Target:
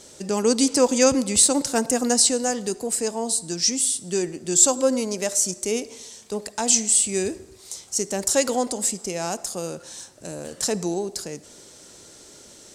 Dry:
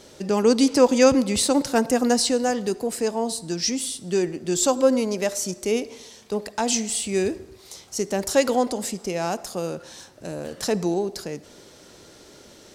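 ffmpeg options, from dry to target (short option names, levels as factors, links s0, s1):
-af "equalizer=f=8000:t=o:w=1:g=12.5,volume=0.75"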